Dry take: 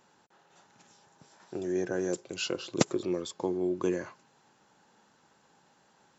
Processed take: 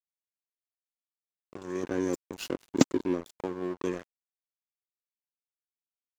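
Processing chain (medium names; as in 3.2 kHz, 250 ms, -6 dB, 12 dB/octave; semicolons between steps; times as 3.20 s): 1.83–3.21 s: peaking EQ 270 Hz +12.5 dB 0.43 oct; crossover distortion -35 dBFS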